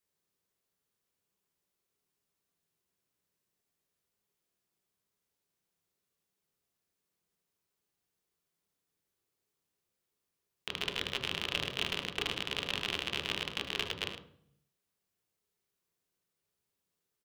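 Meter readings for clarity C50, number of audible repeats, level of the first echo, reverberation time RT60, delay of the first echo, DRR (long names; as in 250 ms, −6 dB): 6.0 dB, 2, −12.5 dB, 0.60 s, 76 ms, 0.5 dB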